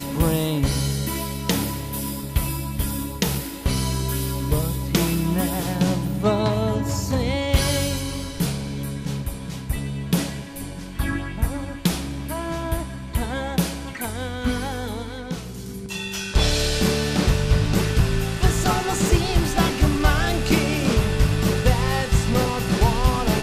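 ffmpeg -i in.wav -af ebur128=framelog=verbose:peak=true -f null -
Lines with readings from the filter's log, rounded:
Integrated loudness:
  I:         -23.2 LUFS
  Threshold: -33.3 LUFS
Loudness range:
  LRA:         7.0 LU
  Threshold: -43.5 LUFS
  LRA low:   -27.7 LUFS
  LRA high:  -20.7 LUFS
True peak:
  Peak:       -4.2 dBFS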